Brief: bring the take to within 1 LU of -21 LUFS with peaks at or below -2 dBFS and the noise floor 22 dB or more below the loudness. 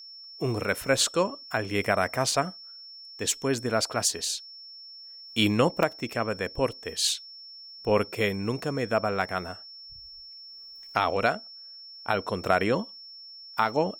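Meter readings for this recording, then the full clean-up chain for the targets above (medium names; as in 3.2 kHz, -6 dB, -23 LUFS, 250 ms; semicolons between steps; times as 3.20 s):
dropouts 2; longest dropout 2.0 ms; steady tone 5.4 kHz; tone level -43 dBFS; loudness -27.5 LUFS; peak level -7.5 dBFS; loudness target -21.0 LUFS
-> interpolate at 0.88/5.83 s, 2 ms; band-stop 5.4 kHz, Q 30; trim +6.5 dB; peak limiter -2 dBFS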